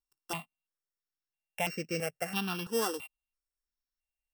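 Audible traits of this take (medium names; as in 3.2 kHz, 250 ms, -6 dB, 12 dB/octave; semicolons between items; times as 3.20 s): a buzz of ramps at a fixed pitch in blocks of 16 samples; notches that jump at a steady rate 3 Hz 600–3400 Hz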